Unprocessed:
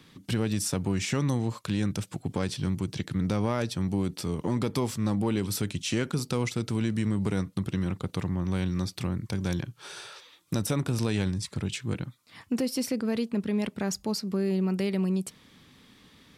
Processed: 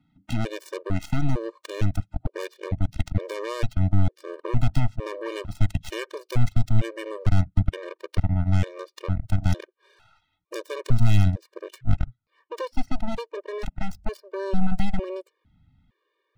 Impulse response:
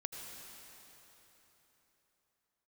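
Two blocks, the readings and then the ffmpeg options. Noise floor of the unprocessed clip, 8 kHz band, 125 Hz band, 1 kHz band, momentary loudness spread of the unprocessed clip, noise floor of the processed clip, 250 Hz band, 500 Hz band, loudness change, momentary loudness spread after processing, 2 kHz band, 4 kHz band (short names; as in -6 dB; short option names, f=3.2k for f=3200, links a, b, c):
-58 dBFS, under -10 dB, +5.5 dB, +2.0 dB, 6 LU, -76 dBFS, -3.5 dB, -0.5 dB, +1.5 dB, 12 LU, 0.0 dB, -4.5 dB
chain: -af "adynamicsmooth=sensitivity=6.5:basefreq=1.9k,aeval=exprs='0.188*(cos(1*acos(clip(val(0)/0.188,-1,1)))-cos(1*PI/2))+0.0119*(cos(2*acos(clip(val(0)/0.188,-1,1)))-cos(2*PI/2))+0.0335*(cos(7*acos(clip(val(0)/0.188,-1,1)))-cos(7*PI/2))+0.00473*(cos(8*acos(clip(val(0)/0.188,-1,1)))-cos(8*PI/2))':c=same,asubboost=boost=8:cutoff=95,afftfilt=real='re*gt(sin(2*PI*1.1*pts/sr)*(1-2*mod(floor(b*sr/1024/310),2)),0)':imag='im*gt(sin(2*PI*1.1*pts/sr)*(1-2*mod(floor(b*sr/1024/310),2)),0)':win_size=1024:overlap=0.75,volume=4dB"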